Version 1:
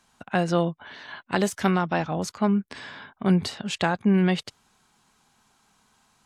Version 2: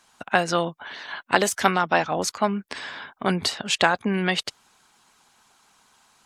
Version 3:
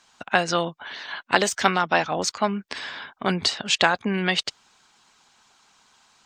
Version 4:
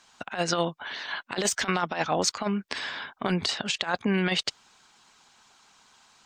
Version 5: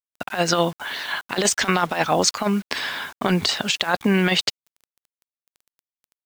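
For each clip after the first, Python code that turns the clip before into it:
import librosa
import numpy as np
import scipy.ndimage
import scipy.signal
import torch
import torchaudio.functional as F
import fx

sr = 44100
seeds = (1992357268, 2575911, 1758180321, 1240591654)

y1 = fx.low_shelf(x, sr, hz=270.0, db=-11.0)
y1 = fx.hpss(y1, sr, part='percussive', gain_db=7)
y1 = y1 * 10.0 ** (1.5 / 20.0)
y2 = np.convolve(y1, np.full(4, 1.0 / 4))[:len(y1)]
y2 = fx.high_shelf(y2, sr, hz=3300.0, db=9.5)
y2 = y2 * 10.0 ** (-1.0 / 20.0)
y3 = fx.over_compress(y2, sr, threshold_db=-23.0, ratio=-0.5)
y3 = y3 * 10.0 ** (-2.0 / 20.0)
y4 = fx.quant_dither(y3, sr, seeds[0], bits=8, dither='none')
y4 = y4 * 10.0 ** (6.5 / 20.0)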